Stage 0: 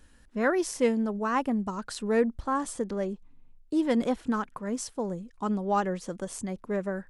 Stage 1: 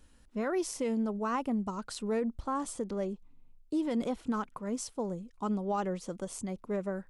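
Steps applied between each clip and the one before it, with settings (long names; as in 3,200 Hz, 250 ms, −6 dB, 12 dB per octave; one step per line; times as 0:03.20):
parametric band 1,700 Hz −7.5 dB 0.28 octaves
brickwall limiter −20.5 dBFS, peak gain reduction 8 dB
level −3 dB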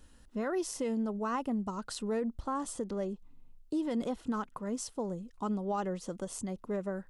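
notch filter 2,300 Hz, Q 10
in parallel at 0 dB: downward compressor, threshold −41 dBFS, peak gain reduction 13 dB
on the sum: level −3.5 dB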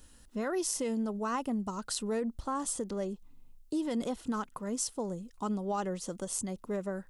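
high-shelf EQ 4,400 Hz +9.5 dB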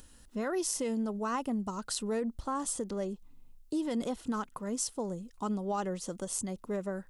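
upward compression, threshold −53 dBFS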